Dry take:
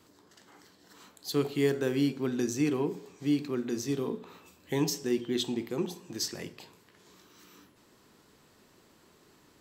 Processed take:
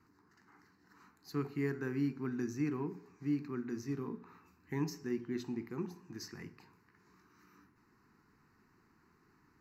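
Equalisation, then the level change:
moving average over 5 samples
phaser with its sweep stopped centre 1,400 Hz, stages 4
−3.5 dB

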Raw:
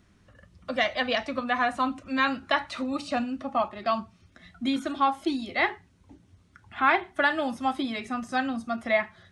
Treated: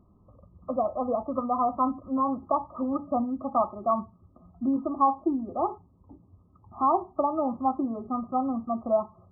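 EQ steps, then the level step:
linear-phase brick-wall low-pass 1,300 Hz
+1.5 dB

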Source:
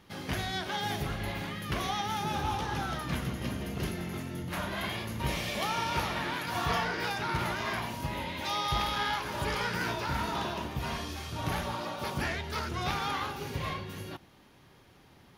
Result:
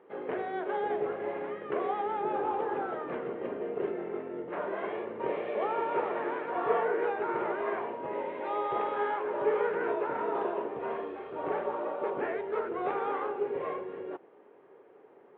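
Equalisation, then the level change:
Gaussian smoothing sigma 4.6 samples
high-pass with resonance 430 Hz, resonance Q 4.9
0.0 dB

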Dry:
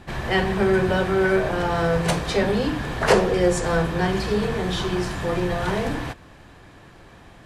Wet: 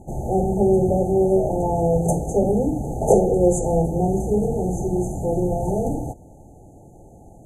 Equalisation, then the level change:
linear-phase brick-wall band-stop 890–6,100 Hz
+2.5 dB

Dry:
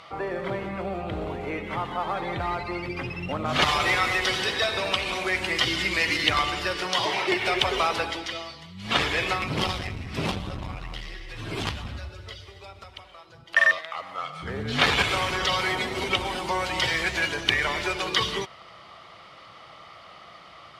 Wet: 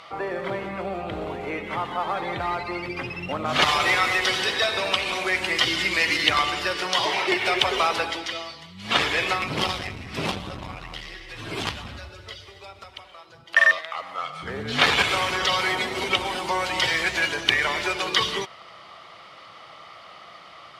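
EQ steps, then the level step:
low-shelf EQ 88 Hz −7 dB
low-shelf EQ 320 Hz −3.5 dB
+2.5 dB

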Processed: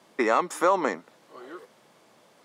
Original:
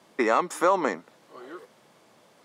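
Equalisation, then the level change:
low-shelf EQ 100 Hz −5.5 dB
0.0 dB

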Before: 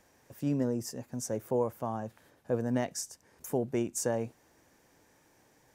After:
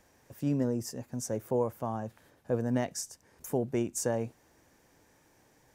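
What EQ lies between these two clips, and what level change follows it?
low-shelf EQ 98 Hz +5 dB
0.0 dB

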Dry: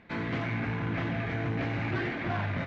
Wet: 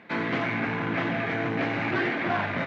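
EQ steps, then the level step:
high-pass filter 190 Hz 12 dB per octave
low-shelf EQ 470 Hz −3 dB
high-shelf EQ 4,400 Hz −5.5 dB
+8.0 dB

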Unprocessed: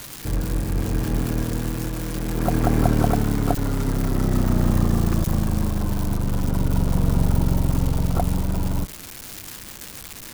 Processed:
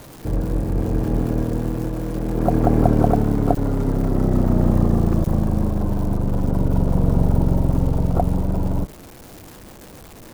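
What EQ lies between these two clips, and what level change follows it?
low-shelf EQ 480 Hz +11.5 dB
parametric band 620 Hz +11 dB 2.2 octaves
−10.0 dB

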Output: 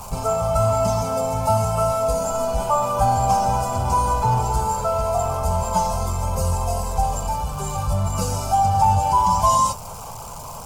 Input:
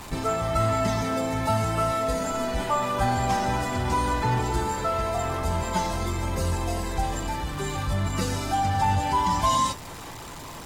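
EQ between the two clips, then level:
parametric band 64 Hz −2 dB 2.7 octaves
parametric band 3,700 Hz −12.5 dB 0.48 octaves
phaser with its sweep stopped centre 770 Hz, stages 4
+7.5 dB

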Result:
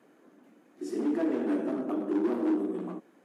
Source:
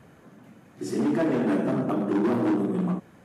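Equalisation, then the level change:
four-pole ladder high-pass 250 Hz, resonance 45%
0.0 dB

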